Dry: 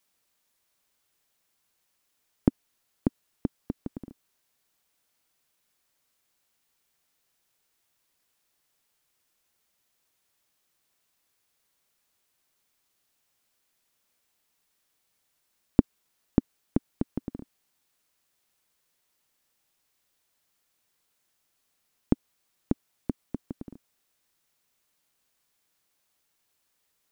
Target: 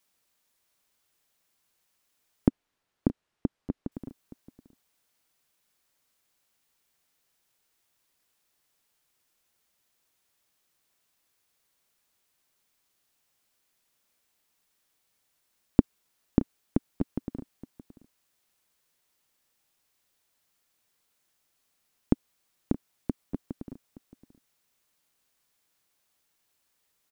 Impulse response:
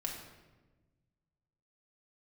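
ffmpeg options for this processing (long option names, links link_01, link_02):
-filter_complex "[0:a]asettb=1/sr,asplit=3[link_01][link_02][link_03];[link_01]atrim=end=2.484[link_04];[link_02]atrim=start=2.48:end=3.92,asetpts=PTS-STARTPTS,afade=type=in:duration=0.004:curve=qsin,afade=type=out:start_time=1.436:duration=0.004:curve=qsin,aemphasis=mode=reproduction:type=75fm[link_05];[link_03]atrim=start=3.916[link_06];[link_04][link_05]acrossfade=duration=0.004:curve1=hsin:curve2=qsin[link_07];[link_07][link_06]acrossfade=duration=0.004:curve1=qsin:curve2=hsin,aecho=1:1:622:0.15"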